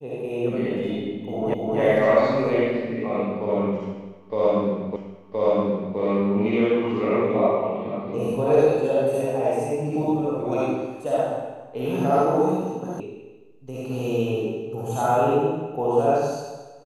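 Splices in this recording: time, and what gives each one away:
1.54 repeat of the last 0.26 s
4.96 repeat of the last 1.02 s
13 sound cut off

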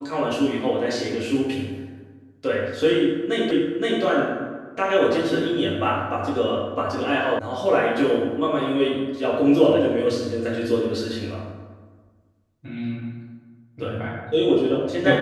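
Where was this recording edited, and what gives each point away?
3.51 repeat of the last 0.52 s
7.39 sound cut off

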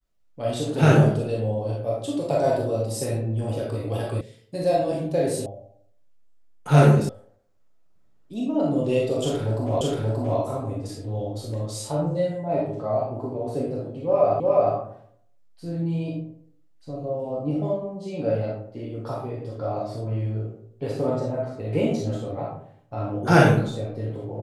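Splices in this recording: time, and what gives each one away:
4.21 sound cut off
5.46 sound cut off
7.09 sound cut off
9.81 repeat of the last 0.58 s
14.4 repeat of the last 0.36 s

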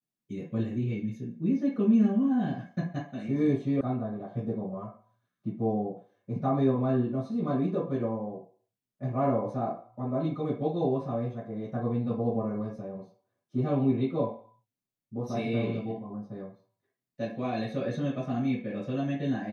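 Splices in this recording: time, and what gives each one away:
3.81 sound cut off

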